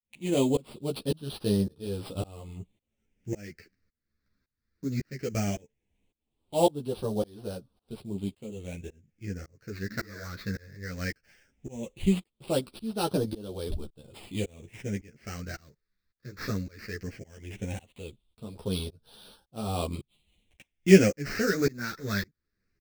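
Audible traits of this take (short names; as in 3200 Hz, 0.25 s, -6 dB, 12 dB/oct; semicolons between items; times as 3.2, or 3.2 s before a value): aliases and images of a low sample rate 7000 Hz, jitter 20%; phasing stages 6, 0.17 Hz, lowest notch 790–2000 Hz; tremolo saw up 1.8 Hz, depth 100%; a shimmering, thickened sound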